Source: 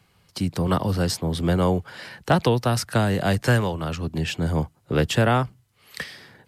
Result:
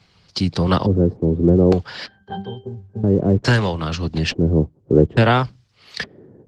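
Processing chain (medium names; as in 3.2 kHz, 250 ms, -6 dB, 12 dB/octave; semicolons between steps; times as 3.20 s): LFO low-pass square 0.58 Hz 390–4900 Hz; 2.06–3.04 s: pitch-class resonator G, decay 0.26 s; trim +5 dB; Opus 16 kbps 48 kHz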